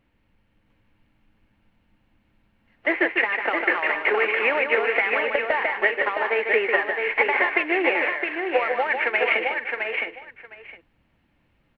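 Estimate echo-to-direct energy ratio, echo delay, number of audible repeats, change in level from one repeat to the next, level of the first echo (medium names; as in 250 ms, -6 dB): -2.0 dB, 150 ms, 5, no regular repeats, -6.0 dB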